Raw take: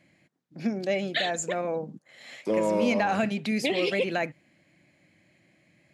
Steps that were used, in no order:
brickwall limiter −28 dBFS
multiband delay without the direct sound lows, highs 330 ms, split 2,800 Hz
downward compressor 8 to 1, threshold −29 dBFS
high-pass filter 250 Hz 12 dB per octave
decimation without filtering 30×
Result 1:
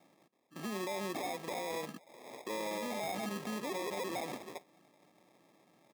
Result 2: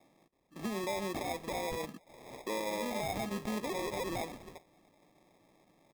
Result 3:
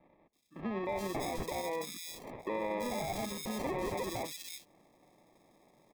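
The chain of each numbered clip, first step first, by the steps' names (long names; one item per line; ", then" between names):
multiband delay without the direct sound, then decimation without filtering, then high-pass filter, then brickwall limiter, then downward compressor
high-pass filter, then downward compressor, then multiband delay without the direct sound, then brickwall limiter, then decimation without filtering
high-pass filter, then decimation without filtering, then multiband delay without the direct sound, then brickwall limiter, then downward compressor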